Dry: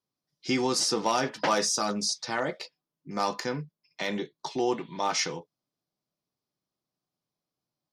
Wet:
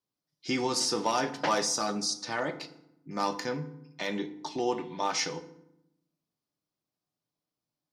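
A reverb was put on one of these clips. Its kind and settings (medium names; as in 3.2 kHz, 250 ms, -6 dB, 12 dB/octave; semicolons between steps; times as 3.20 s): FDN reverb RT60 0.8 s, low-frequency decay 1.5×, high-frequency decay 0.65×, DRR 9.5 dB; trim -2.5 dB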